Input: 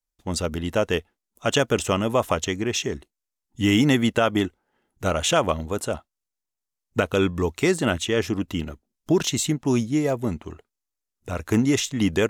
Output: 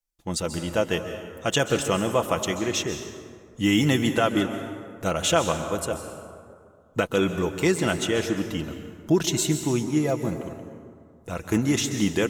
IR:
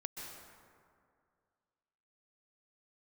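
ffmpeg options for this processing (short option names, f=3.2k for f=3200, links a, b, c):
-filter_complex "[0:a]asplit=2[a][b];[1:a]atrim=start_sample=2205,highshelf=f=6.1k:g=10.5,adelay=6[c];[b][c]afir=irnorm=-1:irlink=0,volume=-4dB[d];[a][d]amix=inputs=2:normalize=0,volume=-2.5dB"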